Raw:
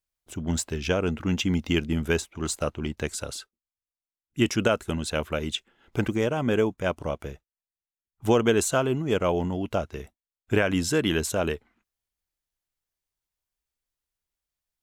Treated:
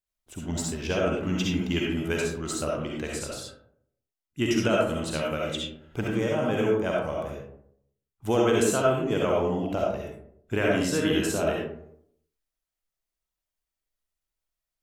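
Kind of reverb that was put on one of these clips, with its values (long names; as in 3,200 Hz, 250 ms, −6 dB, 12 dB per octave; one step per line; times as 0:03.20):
comb and all-pass reverb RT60 0.7 s, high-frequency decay 0.4×, pre-delay 25 ms, DRR −3 dB
level −5 dB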